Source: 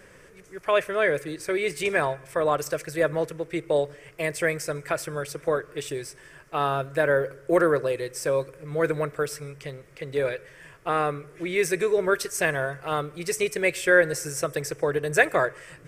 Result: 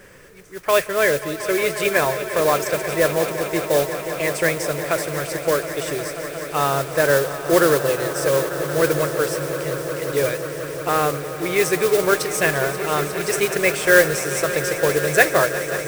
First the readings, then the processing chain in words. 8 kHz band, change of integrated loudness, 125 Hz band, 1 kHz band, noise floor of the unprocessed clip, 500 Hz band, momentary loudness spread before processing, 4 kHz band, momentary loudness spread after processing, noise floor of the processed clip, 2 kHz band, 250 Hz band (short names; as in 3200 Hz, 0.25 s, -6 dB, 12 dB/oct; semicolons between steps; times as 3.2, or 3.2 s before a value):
+9.0 dB, +6.0 dB, +6.0 dB, +5.5 dB, -51 dBFS, +5.5 dB, 11 LU, +9.0 dB, 9 LU, -32 dBFS, +5.5 dB, +6.0 dB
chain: modulation noise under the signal 12 dB; swelling echo 0.179 s, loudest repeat 5, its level -14.5 dB; gain +4.5 dB